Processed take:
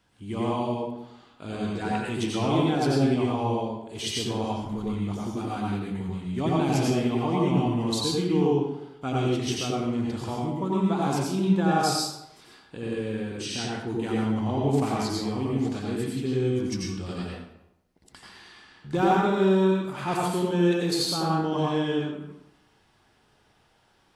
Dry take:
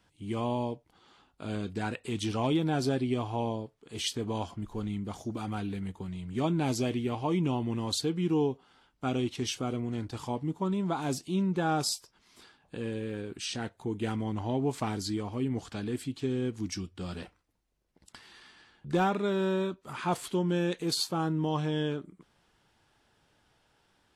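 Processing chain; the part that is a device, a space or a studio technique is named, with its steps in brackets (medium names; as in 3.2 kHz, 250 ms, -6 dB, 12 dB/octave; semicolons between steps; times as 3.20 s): bathroom (reverberation RT60 0.85 s, pre-delay 81 ms, DRR -4 dB)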